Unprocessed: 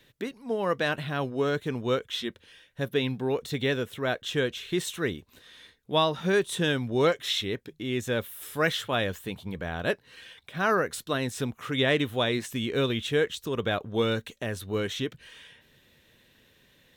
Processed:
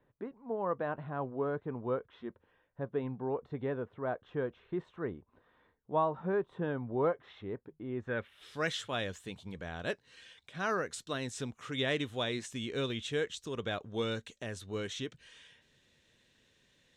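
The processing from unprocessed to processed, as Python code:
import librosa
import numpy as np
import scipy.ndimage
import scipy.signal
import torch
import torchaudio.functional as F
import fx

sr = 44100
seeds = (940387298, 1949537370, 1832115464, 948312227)

y = fx.filter_sweep_lowpass(x, sr, from_hz=1000.0, to_hz=7300.0, start_s=7.97, end_s=8.67, q=1.8)
y = y * 10.0 ** (-8.5 / 20.0)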